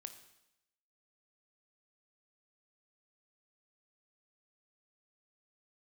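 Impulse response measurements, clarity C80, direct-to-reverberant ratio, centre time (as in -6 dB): 13.0 dB, 8.0 dB, 12 ms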